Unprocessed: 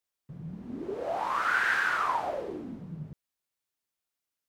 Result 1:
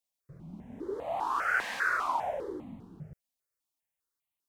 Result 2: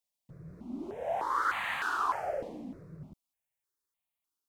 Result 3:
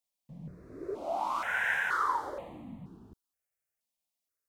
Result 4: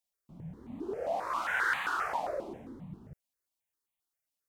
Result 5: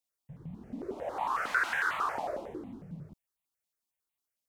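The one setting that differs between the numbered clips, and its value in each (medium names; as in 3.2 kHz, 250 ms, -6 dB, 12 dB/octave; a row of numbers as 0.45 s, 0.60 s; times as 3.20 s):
stepped phaser, rate: 5 Hz, 3.3 Hz, 2.1 Hz, 7.5 Hz, 11 Hz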